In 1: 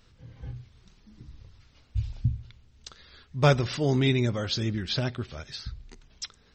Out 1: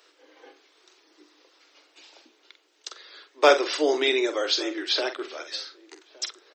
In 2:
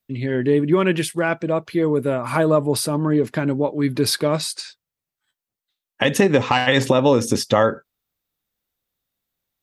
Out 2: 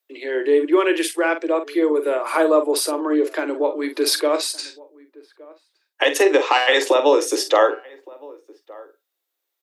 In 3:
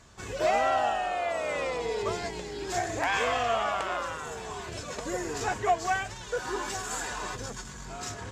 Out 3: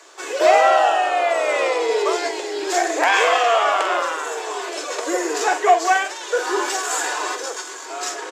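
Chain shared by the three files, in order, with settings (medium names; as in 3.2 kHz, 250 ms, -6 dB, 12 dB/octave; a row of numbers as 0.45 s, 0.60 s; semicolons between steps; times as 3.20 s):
steep high-pass 300 Hz 96 dB/octave; doubling 46 ms -9.5 dB; echo from a far wall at 200 m, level -23 dB; peak normalisation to -3 dBFS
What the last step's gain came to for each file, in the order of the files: +6.0 dB, +1.5 dB, +10.5 dB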